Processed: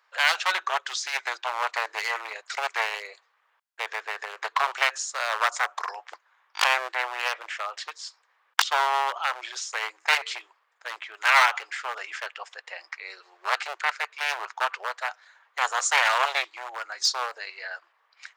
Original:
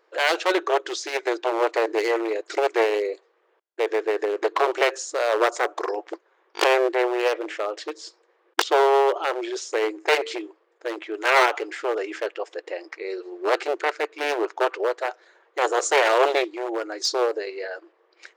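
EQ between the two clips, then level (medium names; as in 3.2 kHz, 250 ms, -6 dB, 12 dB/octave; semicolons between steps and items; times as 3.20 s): high-pass 910 Hz 24 dB/octave; +1.5 dB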